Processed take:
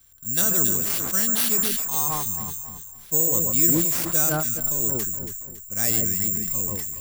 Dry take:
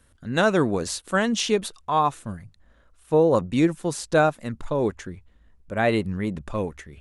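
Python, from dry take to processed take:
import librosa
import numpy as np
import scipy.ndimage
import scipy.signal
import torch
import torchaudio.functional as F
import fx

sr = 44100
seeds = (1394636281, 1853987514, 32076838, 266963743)

p1 = fx.peak_eq(x, sr, hz=680.0, db=-11.5, octaves=2.4)
p2 = (np.kron(p1[::6], np.eye(6)[0]) * 6)[:len(p1)]
p3 = fx.high_shelf(p2, sr, hz=8300.0, db=4.0)
p4 = p3 + fx.echo_alternate(p3, sr, ms=139, hz=1500.0, feedback_pct=59, wet_db=-5.5, dry=0)
p5 = fx.sustainer(p4, sr, db_per_s=25.0)
y = p5 * librosa.db_to_amplitude(-5.5)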